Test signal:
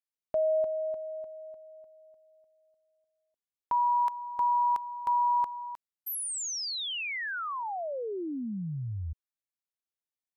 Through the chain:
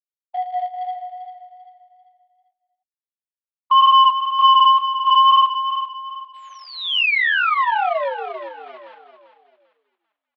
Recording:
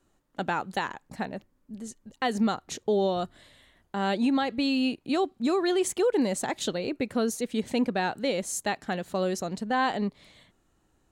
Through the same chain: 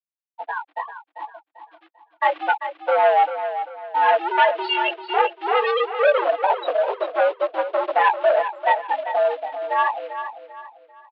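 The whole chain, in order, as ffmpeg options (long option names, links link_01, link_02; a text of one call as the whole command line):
ffmpeg -i in.wav -filter_complex "[0:a]afftfilt=real='re*gte(hypot(re,im),0.158)':imag='im*gte(hypot(re,im),0.158)':win_size=1024:overlap=0.75,flanger=delay=16.5:depth=3.5:speed=2,acrossover=split=2000[link_01][link_02];[link_02]alimiter=level_in=17dB:limit=-24dB:level=0:latency=1:release=27,volume=-17dB[link_03];[link_01][link_03]amix=inputs=2:normalize=0,dynaudnorm=framelen=150:gausssize=31:maxgain=15dB,asplit=2[link_04][link_05];[link_05]acrusher=bits=2:mode=log:mix=0:aa=0.000001,volume=-5.5dB[link_06];[link_04][link_06]amix=inputs=2:normalize=0,asoftclip=type=tanh:threshold=-12dB,highpass=frequency=490:width_type=q:width=0.5412,highpass=frequency=490:width_type=q:width=1.307,lowpass=frequency=3500:width_type=q:width=0.5176,lowpass=frequency=3500:width_type=q:width=0.7071,lowpass=frequency=3500:width_type=q:width=1.932,afreqshift=100,aecho=1:1:393|786|1179|1572:0.316|0.111|0.0387|0.0136,adynamicequalizer=threshold=0.00891:dfrequency=2800:dqfactor=3.4:tfrequency=2800:tqfactor=3.4:attack=5:release=100:ratio=0.375:range=2.5:mode=boostabove:tftype=bell,volume=3dB" out.wav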